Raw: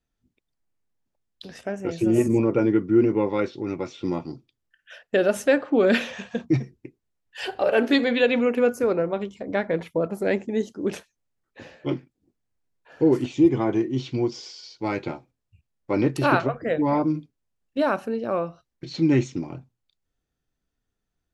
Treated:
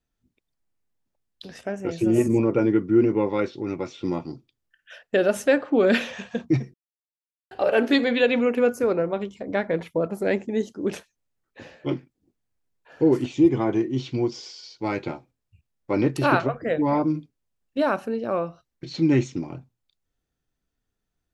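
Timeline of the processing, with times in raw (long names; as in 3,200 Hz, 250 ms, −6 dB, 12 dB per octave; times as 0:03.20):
0:06.74–0:07.51: silence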